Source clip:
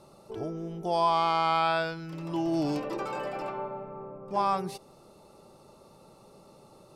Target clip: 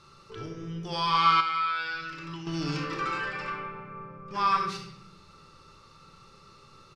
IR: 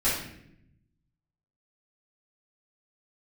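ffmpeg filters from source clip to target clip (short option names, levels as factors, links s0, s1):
-filter_complex "[0:a]asplit=2[s0][s1];[1:a]atrim=start_sample=2205,adelay=25[s2];[s1][s2]afir=irnorm=-1:irlink=0,volume=0.211[s3];[s0][s3]amix=inputs=2:normalize=0,asettb=1/sr,asplit=3[s4][s5][s6];[s4]atrim=end=1.404[s7];[s5]atrim=start=1.4:end=2.47,asetpts=PTS-STARTPTS,afade=t=in:d=0.004:c=qsin,afade=t=out:st=1.066:d=0.004:c=qsin,acompressor=threshold=0.0251:ratio=6[s8];[s6]atrim=start=2.466[s9];[s7][s8]acrossfade=d=0.004:c1=hsin:c2=qsin[s10];[s10][s9]acrossfade=d=0.004:c1=qsin:c2=hsin,firequalizer=gain_entry='entry(140,0);entry(220,-10);entry(450,-6);entry(660,-19);entry(1200,8);entry(6000,4);entry(8800,-8);entry(13000,-15)':delay=0.05:min_phase=1"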